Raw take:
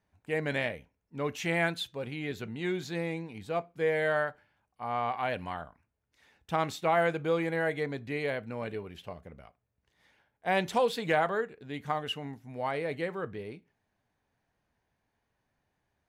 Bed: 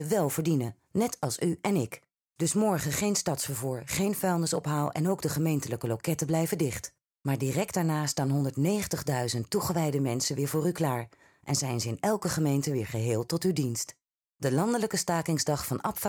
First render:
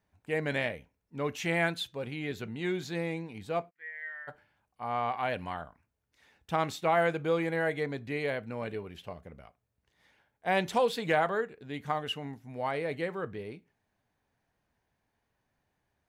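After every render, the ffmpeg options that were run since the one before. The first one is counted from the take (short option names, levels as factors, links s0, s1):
-filter_complex "[0:a]asplit=3[s0][s1][s2];[s0]afade=t=out:st=3.69:d=0.02[s3];[s1]bandpass=f=1900:t=q:w=15,afade=t=in:st=3.69:d=0.02,afade=t=out:st=4.27:d=0.02[s4];[s2]afade=t=in:st=4.27:d=0.02[s5];[s3][s4][s5]amix=inputs=3:normalize=0"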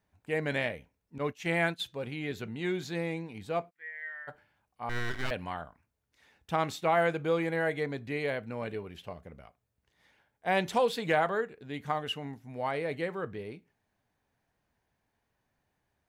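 -filter_complex "[0:a]asettb=1/sr,asplit=3[s0][s1][s2];[s0]atrim=end=1.184[s3];[s1]atrim=start=1.18:end=1.8,asetpts=PTS-STARTPTS,afade=t=in:d=0.004:c=qsin,afade=t=out:st=0.616:d=0.004:c=qsin,agate=range=0.0224:threshold=0.0224:ratio=3:release=100:detection=peak[s4];[s2]atrim=start=1.796[s5];[s3][s4]acrossfade=d=0.004:c1=hsin:c2=qsin[s6];[s6][s5]acrossfade=d=0.004:c1=qsin:c2=hsin,asettb=1/sr,asplit=3[s7][s8][s9];[s7]atrim=end=4.894[s10];[s8]atrim=start=4.89:end=5.31,asetpts=PTS-STARTPTS,afade=t=in:d=0.004:c=qsin,afade=t=out:st=0.416:d=0.004:c=qsin,aeval=exprs='abs(val(0))':c=same[s11];[s9]atrim=start=5.306[s12];[s10][s11]acrossfade=d=0.004:c1=hsin:c2=qsin[s13];[s13][s12]acrossfade=d=0.004:c1=qsin:c2=hsin"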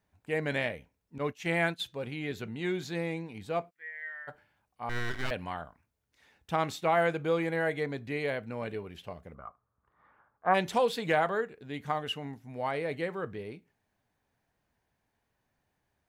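-filter_complex "[0:a]asplit=3[s0][s1][s2];[s0]afade=t=out:st=9.34:d=0.02[s3];[s1]lowpass=f=1200:t=q:w=8.1,afade=t=in:st=9.34:d=0.02,afade=t=out:st=10.53:d=0.02[s4];[s2]afade=t=in:st=10.53:d=0.02[s5];[s3][s4][s5]amix=inputs=3:normalize=0"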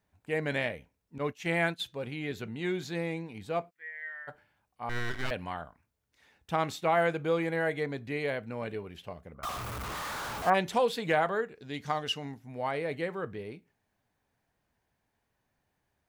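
-filter_complex "[0:a]asettb=1/sr,asplit=3[s0][s1][s2];[s0]atrim=end=9.434[s3];[s1]atrim=start=9.43:end=10.5,asetpts=PTS-STARTPTS,afade=t=in:d=0.004:c=qsin,afade=t=out:st=1.066:d=0.004:c=qsin,aeval=exprs='val(0)+0.5*0.0282*sgn(val(0))':c=same[s4];[s2]atrim=start=10.496[s5];[s3][s4]acrossfade=d=0.004:c1=hsin:c2=qsin[s6];[s6][s5]acrossfade=d=0.004:c1=qsin:c2=hsin,asettb=1/sr,asplit=3[s7][s8][s9];[s7]atrim=end=11.554[s10];[s8]atrim=start=11.55:end=12.33,asetpts=PTS-STARTPTS,afade=t=in:d=0.004:c=qsin,afade=t=out:st=0.776:d=0.004:c=qsin,equalizer=f=5300:t=o:w=0.89:g=12[s11];[s9]atrim=start=12.326[s12];[s10][s11]acrossfade=d=0.004:c1=hsin:c2=qsin[s13];[s13][s12]acrossfade=d=0.004:c1=qsin:c2=hsin"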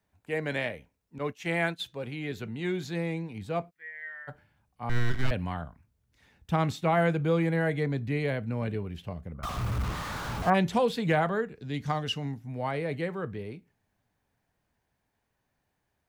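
-filter_complex "[0:a]acrossover=split=220|500|7000[s0][s1][s2][s3];[s0]dynaudnorm=f=340:g=21:m=3.98[s4];[s3]alimiter=level_in=9.44:limit=0.0631:level=0:latency=1,volume=0.106[s5];[s4][s1][s2][s5]amix=inputs=4:normalize=0"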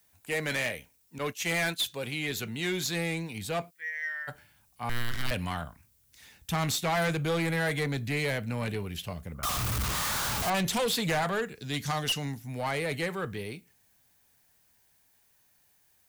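-af "crystalizer=i=7.5:c=0,asoftclip=type=tanh:threshold=0.0631"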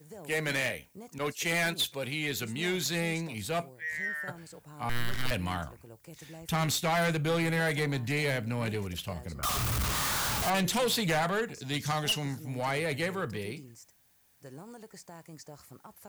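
-filter_complex "[1:a]volume=0.0944[s0];[0:a][s0]amix=inputs=2:normalize=0"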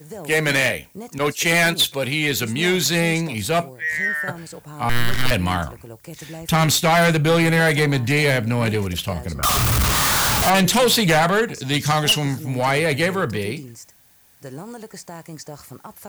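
-af "volume=3.98"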